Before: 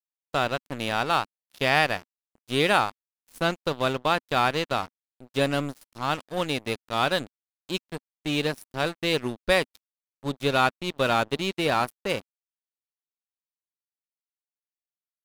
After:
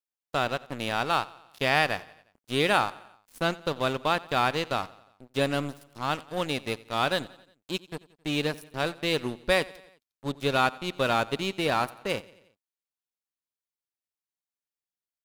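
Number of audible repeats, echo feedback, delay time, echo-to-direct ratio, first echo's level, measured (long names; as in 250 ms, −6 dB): 3, 56%, 89 ms, −19.5 dB, −21.0 dB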